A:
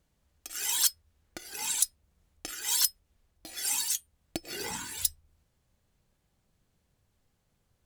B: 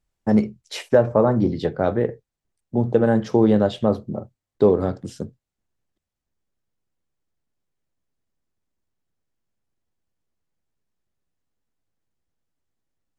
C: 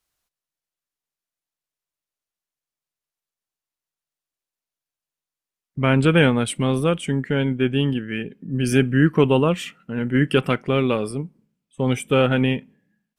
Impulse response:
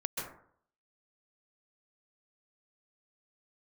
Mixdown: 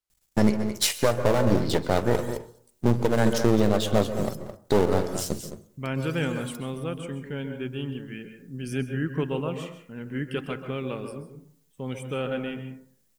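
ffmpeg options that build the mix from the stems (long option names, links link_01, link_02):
-filter_complex "[0:a]acompressor=threshold=-31dB:ratio=6,adelay=1500,volume=-14.5dB,asplit=3[link_01][link_02][link_03];[link_02]volume=-14dB[link_04];[link_03]volume=-20.5dB[link_05];[1:a]aeval=exprs='if(lt(val(0),0),0.251*val(0),val(0))':channel_layout=same,crystalizer=i=5:c=0,adelay=100,volume=2.5dB,asplit=3[link_06][link_07][link_08];[link_07]volume=-12.5dB[link_09];[link_08]volume=-10.5dB[link_10];[2:a]volume=-16dB,asplit=2[link_11][link_12];[link_12]volume=-5.5dB[link_13];[3:a]atrim=start_sample=2205[link_14];[link_04][link_09][link_13]amix=inputs=3:normalize=0[link_15];[link_15][link_14]afir=irnorm=-1:irlink=0[link_16];[link_05][link_10]amix=inputs=2:normalize=0,aecho=0:1:215:1[link_17];[link_01][link_06][link_11][link_16][link_17]amix=inputs=5:normalize=0,alimiter=limit=-8.5dB:level=0:latency=1:release=485"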